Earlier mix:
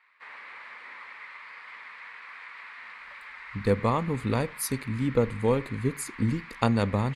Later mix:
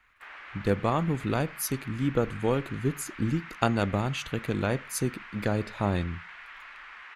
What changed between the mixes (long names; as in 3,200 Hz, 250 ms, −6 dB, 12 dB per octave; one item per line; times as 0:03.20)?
speech: entry −3.00 s
master: remove EQ curve with evenly spaced ripples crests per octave 0.95, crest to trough 7 dB